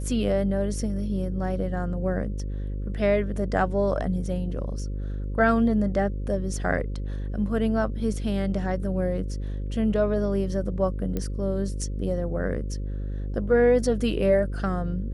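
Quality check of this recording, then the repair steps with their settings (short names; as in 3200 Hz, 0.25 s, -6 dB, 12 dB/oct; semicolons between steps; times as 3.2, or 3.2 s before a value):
buzz 50 Hz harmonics 11 -30 dBFS
11.17 pop -16 dBFS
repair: de-click; de-hum 50 Hz, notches 11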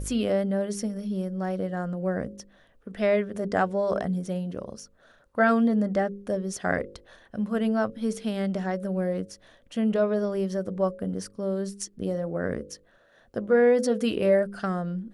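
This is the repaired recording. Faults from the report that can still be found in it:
none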